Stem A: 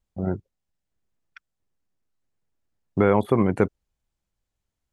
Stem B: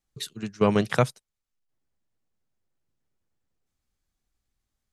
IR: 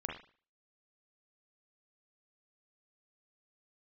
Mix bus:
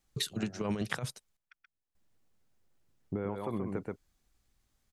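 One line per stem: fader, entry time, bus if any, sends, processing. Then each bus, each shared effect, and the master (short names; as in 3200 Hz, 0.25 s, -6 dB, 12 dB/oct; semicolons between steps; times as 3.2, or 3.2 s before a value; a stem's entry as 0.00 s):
-10.0 dB, 0.15 s, no send, echo send -4 dB, harmonic tremolo 2 Hz, depth 70%, crossover 510 Hz
+2.0 dB, 0.00 s, muted 1.37–1.95, no send, no echo send, negative-ratio compressor -24 dBFS, ratio -0.5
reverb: off
echo: echo 0.129 s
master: compressor 12:1, threshold -30 dBFS, peak gain reduction 13.5 dB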